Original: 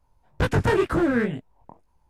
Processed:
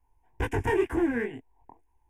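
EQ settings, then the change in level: static phaser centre 860 Hz, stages 8; -3.0 dB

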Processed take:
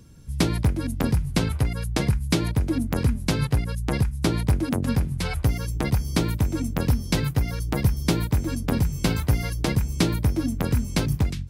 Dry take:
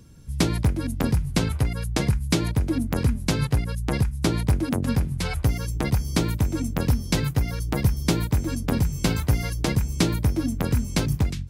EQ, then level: dynamic bell 6.9 kHz, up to -3 dB, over -46 dBFS, Q 2.2; 0.0 dB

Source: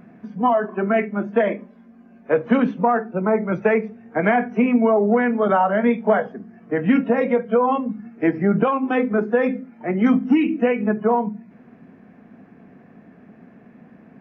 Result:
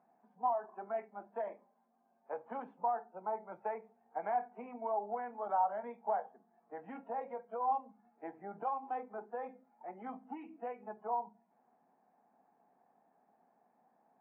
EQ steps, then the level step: band-pass filter 830 Hz, Q 7.1; -6.5 dB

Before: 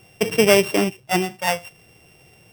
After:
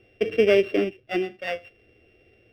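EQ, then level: distance through air 360 m; static phaser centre 380 Hz, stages 4; 0.0 dB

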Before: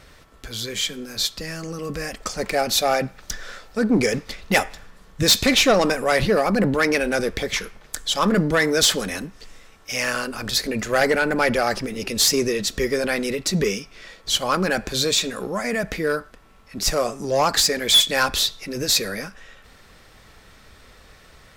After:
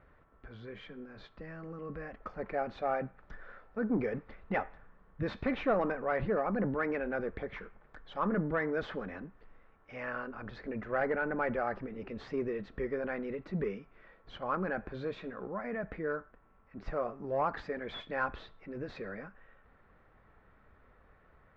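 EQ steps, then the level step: four-pole ladder low-pass 2 kHz, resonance 20%; -7.5 dB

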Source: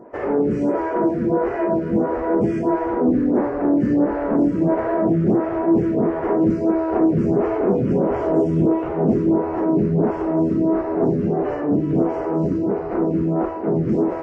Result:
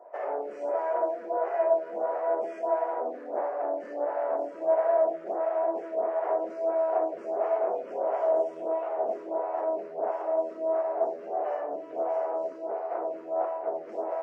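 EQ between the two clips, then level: ladder high-pass 590 Hz, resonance 65%; 0.0 dB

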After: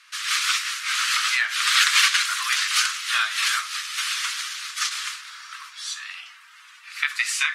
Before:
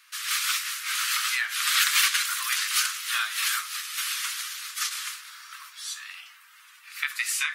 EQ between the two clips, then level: low-pass 7.3 kHz 12 dB/octave; dynamic bell 580 Hz, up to +4 dB, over -50 dBFS, Q 2.3; +5.0 dB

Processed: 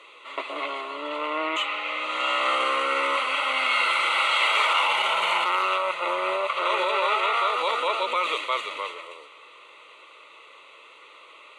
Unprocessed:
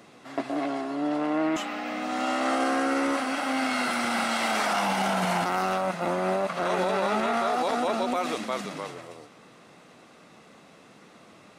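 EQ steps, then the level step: band-pass 660–3700 Hz; treble shelf 2.6 kHz +11.5 dB; static phaser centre 1.1 kHz, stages 8; +6.5 dB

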